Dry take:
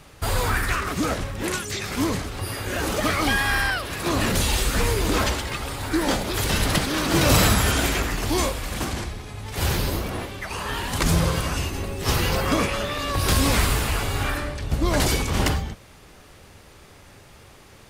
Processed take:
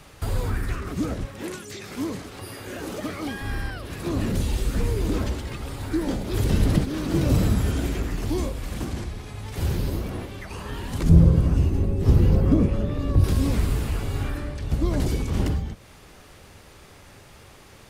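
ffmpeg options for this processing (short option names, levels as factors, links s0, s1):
-filter_complex "[0:a]asettb=1/sr,asplit=3[s0][s1][s2];[s0]atrim=end=1.254[s3];[s1]atrim=start=1.25:end=3.42,asetpts=PTS-STARTPTS,afade=t=in:d=0.004:c=qsin,afade=t=out:st=2.166:d=0.004:c=qsin,highpass=f=290:p=1[s4];[s2]atrim=start=3.416[s5];[s3][s4]acrossfade=d=0.004:c1=hsin:c2=qsin[s6];[s6][s5]acrossfade=d=0.004:c1=qsin:c2=hsin,asplit=3[s7][s8][s9];[s7]afade=t=out:st=6.31:d=0.02[s10];[s8]acontrast=22,afade=t=in:st=6.31:d=0.02,afade=t=out:st=6.83:d=0.02[s11];[s9]afade=t=in:st=6.83:d=0.02[s12];[s10][s11][s12]amix=inputs=3:normalize=0,asettb=1/sr,asplit=3[s13][s14][s15];[s13]atrim=end=11.094[s16];[s14]atrim=start=11.09:end=13.24,asetpts=PTS-STARTPTS,afade=t=in:d=0.004:c=qsin,afade=t=out:st=2.146:d=0.004:c=qsin,tiltshelf=f=710:g=8.5[s17];[s15]atrim=start=13.236[s18];[s16][s17]acrossfade=d=0.004:c1=hsin:c2=qsin[s19];[s19][s18]acrossfade=d=0.004:c1=qsin:c2=hsin,acrossover=split=440[s20][s21];[s21]acompressor=threshold=0.00708:ratio=2.5[s22];[s20][s22]amix=inputs=2:normalize=0"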